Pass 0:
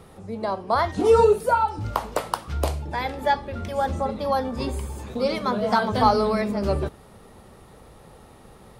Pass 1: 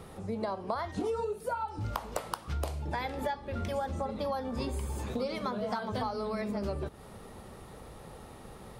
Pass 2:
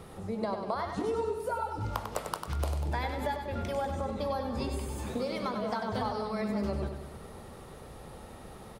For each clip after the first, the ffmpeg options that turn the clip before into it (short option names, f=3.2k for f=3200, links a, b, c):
-af "acompressor=threshold=-30dB:ratio=16"
-af "aecho=1:1:97|194|291|388|485|582|679:0.447|0.255|0.145|0.0827|0.0472|0.0269|0.0153"